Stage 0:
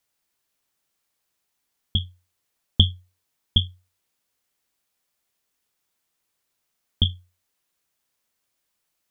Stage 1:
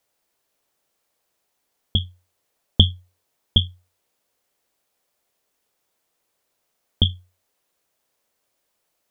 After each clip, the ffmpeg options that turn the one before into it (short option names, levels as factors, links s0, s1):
-af "equalizer=f=550:w=0.91:g=8.5,volume=1.26"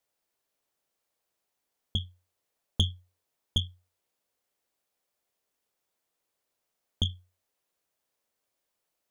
-af "asoftclip=type=tanh:threshold=0.422,volume=0.376"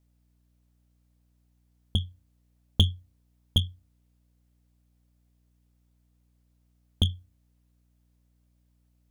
-filter_complex "[0:a]aeval=exprs='val(0)+0.000282*(sin(2*PI*60*n/s)+sin(2*PI*2*60*n/s)/2+sin(2*PI*3*60*n/s)/3+sin(2*PI*4*60*n/s)/4+sin(2*PI*5*60*n/s)/5)':c=same,asplit=2[s0][s1];[s1]adynamicsmooth=sensitivity=3:basefreq=600,volume=0.891[s2];[s0][s2]amix=inputs=2:normalize=0"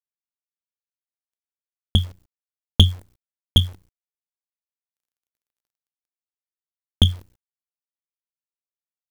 -af "agate=range=0.178:threshold=0.002:ratio=16:detection=peak,dynaudnorm=f=270:g=7:m=2.99,acrusher=bits=8:dc=4:mix=0:aa=0.000001"